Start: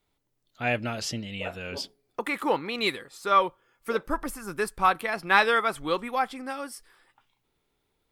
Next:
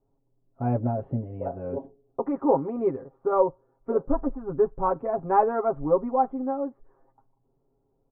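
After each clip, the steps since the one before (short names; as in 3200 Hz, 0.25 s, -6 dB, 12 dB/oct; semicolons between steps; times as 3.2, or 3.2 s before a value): inverse Chebyshev low-pass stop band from 4700 Hz, stop band 80 dB; comb 7.4 ms, depth 93%; gain +3.5 dB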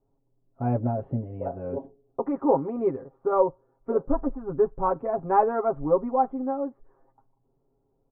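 nothing audible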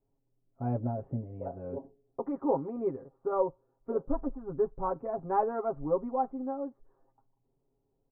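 air absorption 480 m; gain -5.5 dB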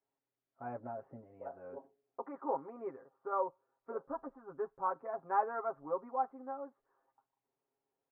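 band-pass 1600 Hz, Q 1.4; gain +4 dB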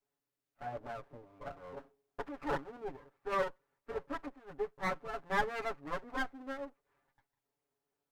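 minimum comb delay 6.9 ms; gain +2 dB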